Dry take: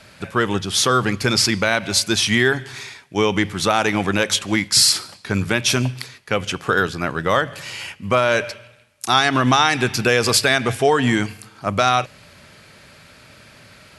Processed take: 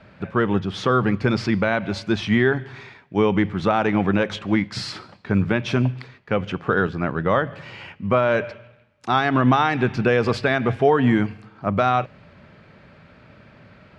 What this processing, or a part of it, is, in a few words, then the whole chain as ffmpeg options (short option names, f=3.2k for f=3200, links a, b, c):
phone in a pocket: -af "lowpass=3.3k,equalizer=f=190:t=o:w=0.68:g=3.5,highshelf=f=2.1k:g=-11.5"